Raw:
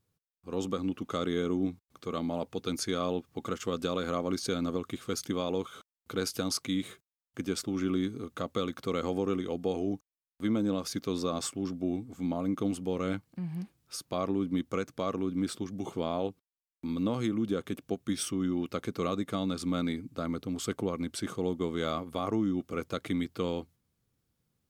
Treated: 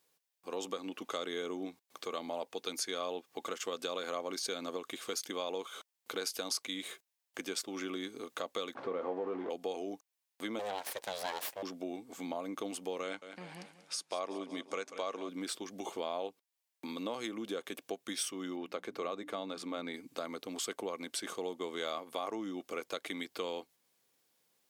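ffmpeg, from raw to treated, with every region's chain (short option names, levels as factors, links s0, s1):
-filter_complex "[0:a]asettb=1/sr,asplit=3[s0][s1][s2];[s0]atrim=end=8.754[s3];[s1]atrim=start=8.75:end=9.5,asetpts=PTS-STARTPTS,afade=t=in:d=0.004:c=qsin,afade=t=out:st=0.746:d=0.004:c=qsin,aeval=exprs='val(0)+0.5*0.0178*sgn(val(0))':c=same,lowpass=1100,asplit=2[s4][s5];[s5]adelay=22,volume=0.282[s6];[s4][s6]amix=inputs=2:normalize=0,atrim=end_sample=33075[s7];[s2]atrim=start=9.496[s8];[s3][s7]acrossfade=d=0.004:c1=hsin:c2=qsin[s9];[s9][s8]acrossfade=d=0.004:c1=qsin:c2=hsin,asettb=1/sr,asplit=3[s10][s11][s12];[s10]atrim=end=10.594[s13];[s11]atrim=start=10.59:end=11.63,asetpts=PTS-STARTPTS,afade=t=in:d=0.004:c=qsin,afade=t=out:st=1.036:d=0.004:c=qsin,equalizer=f=71:w=3.1:g=-14.5,aeval=exprs='abs(val(0))':c=same[s14];[s12]atrim=start=11.626[s15];[s13][s14]acrossfade=d=0.004:c1=hsin:c2=qsin[s16];[s16][s15]acrossfade=d=0.004:c1=qsin:c2=hsin,asettb=1/sr,asplit=3[s17][s18][s19];[s17]atrim=end=13.034[s20];[s18]atrim=start=13.03:end=15.29,asetpts=PTS-STARTPTS,afade=t=in:d=0.004:c=qsin,afade=t=out:st=2.256:d=0.004:c=qsin,lowpass=f=10000:w=0.5412,lowpass=f=10000:w=1.3066,equalizer=f=65:w=0.37:g=-7.5,aecho=1:1:187|374|561|748:0.188|0.0829|0.0365|0.016,atrim=end_sample=99666[s21];[s19]atrim=start=15.286[s22];[s20][s21]acrossfade=d=0.004:c1=hsin:c2=qsin[s23];[s23][s22]acrossfade=d=0.004:c1=qsin:c2=hsin,asettb=1/sr,asplit=3[s24][s25][s26];[s24]atrim=end=18.564[s27];[s25]atrim=start=18.56:end=19.94,asetpts=PTS-STARTPTS,afade=t=in:d=0.004:c=qsin,afade=t=out:st=1.376:d=0.004:c=qsin,highshelf=f=3300:g=-11.5,bandreject=f=60:t=h:w=6,bandreject=f=120:t=h:w=6,bandreject=f=180:t=h:w=6,bandreject=f=240:t=h:w=6,bandreject=f=300:t=h:w=6[s28];[s26]atrim=start=19.936[s29];[s27][s28]acrossfade=d=0.004:c1=hsin:c2=qsin[s30];[s30][s29]acrossfade=d=0.004:c1=qsin:c2=hsin,highpass=560,equalizer=f=1300:t=o:w=0.34:g=-6.5,acompressor=threshold=0.00282:ratio=2,volume=2.82"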